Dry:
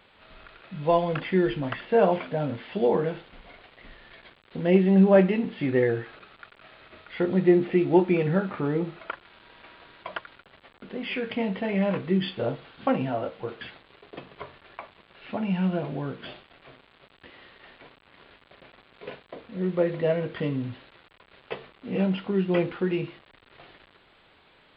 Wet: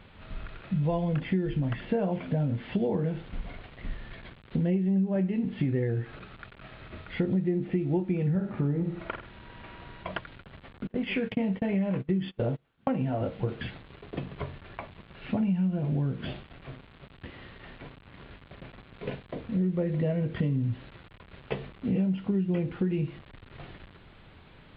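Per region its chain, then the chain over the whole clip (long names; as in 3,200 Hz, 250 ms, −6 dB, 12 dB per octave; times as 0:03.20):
0:08.30–0:10.11: high-frequency loss of the air 80 metres + flutter between parallel walls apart 8.4 metres, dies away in 0.4 s
0:10.87–0:13.21: bass and treble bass −5 dB, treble −5 dB + noise gate −37 dBFS, range −26 dB
whole clip: bass and treble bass +15 dB, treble −6 dB; downward compressor 8 to 1, threshold −26 dBFS; dynamic equaliser 1,200 Hz, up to −4 dB, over −50 dBFS, Q 1.9; level +1.5 dB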